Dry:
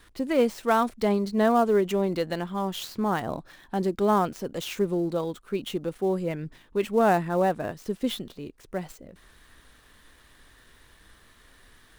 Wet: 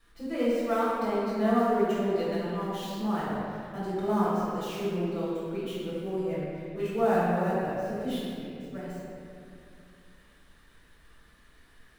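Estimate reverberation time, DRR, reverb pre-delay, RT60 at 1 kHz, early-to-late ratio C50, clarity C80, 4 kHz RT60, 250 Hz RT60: 2.5 s, -11.0 dB, 3 ms, 2.3 s, -3.5 dB, -1.5 dB, 1.7 s, 3.1 s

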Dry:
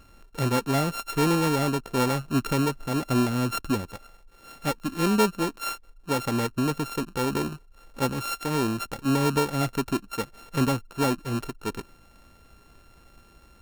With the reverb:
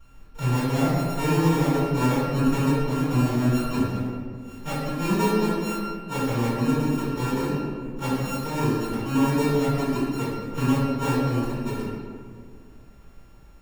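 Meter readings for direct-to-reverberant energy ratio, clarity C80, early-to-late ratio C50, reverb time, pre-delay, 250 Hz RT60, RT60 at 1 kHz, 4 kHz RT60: -15.5 dB, 0.5 dB, -2.0 dB, 1.9 s, 3 ms, 2.4 s, 1.7 s, 1.0 s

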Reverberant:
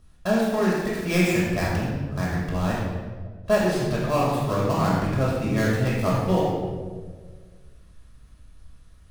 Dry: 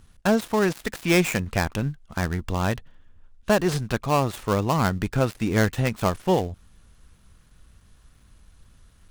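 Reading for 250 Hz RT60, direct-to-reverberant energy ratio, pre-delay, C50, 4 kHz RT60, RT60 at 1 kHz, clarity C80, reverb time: 1.8 s, -6.0 dB, 5 ms, -0.5 dB, 0.95 s, 1.3 s, 1.5 dB, 1.6 s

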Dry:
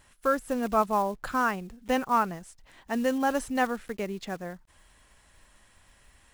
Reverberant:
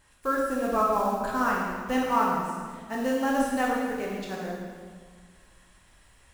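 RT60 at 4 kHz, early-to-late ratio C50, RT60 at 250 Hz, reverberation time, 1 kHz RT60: 1.5 s, 0.0 dB, 2.0 s, 1.7 s, 1.6 s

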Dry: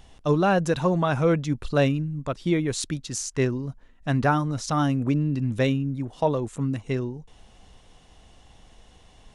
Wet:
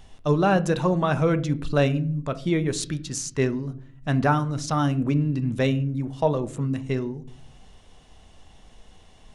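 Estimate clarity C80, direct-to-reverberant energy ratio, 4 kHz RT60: 22.0 dB, 11.0 dB, 0.35 s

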